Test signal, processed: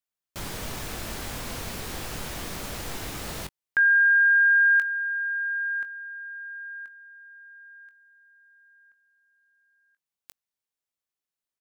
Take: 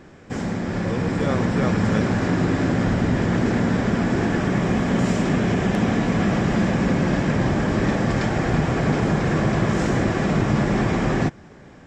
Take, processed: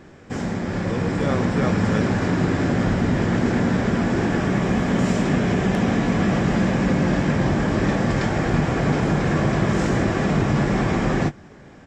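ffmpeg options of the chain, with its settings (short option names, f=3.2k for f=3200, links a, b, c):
-filter_complex "[0:a]asplit=2[a][b];[b]adelay=21,volume=-11.5dB[c];[a][c]amix=inputs=2:normalize=0"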